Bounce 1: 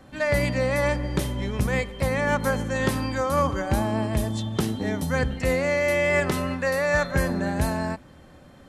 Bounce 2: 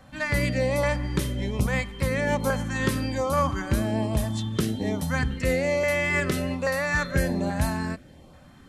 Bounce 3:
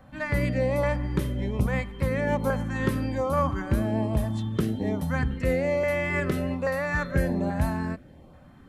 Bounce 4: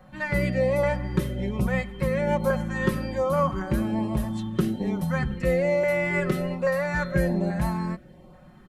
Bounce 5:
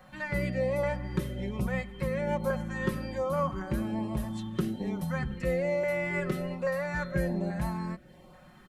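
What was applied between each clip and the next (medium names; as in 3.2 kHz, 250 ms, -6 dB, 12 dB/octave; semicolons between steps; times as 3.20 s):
LFO notch saw up 1.2 Hz 320–1900 Hz
peaking EQ 6.5 kHz -11.5 dB 2.5 oct
comb 5.5 ms, depth 78%; trim -1 dB
tape noise reduction on one side only encoder only; trim -6 dB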